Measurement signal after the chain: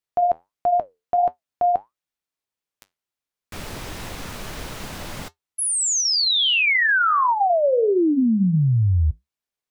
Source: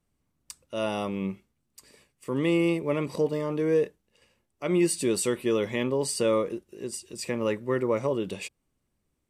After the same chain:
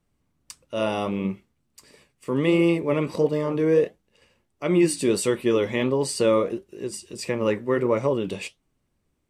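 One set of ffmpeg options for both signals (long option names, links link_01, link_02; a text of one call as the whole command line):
ffmpeg -i in.wav -af "highshelf=frequency=7300:gain=-6.5,flanger=delay=6.1:depth=6.4:regen=-70:speed=1.5:shape=sinusoidal,volume=8.5dB" out.wav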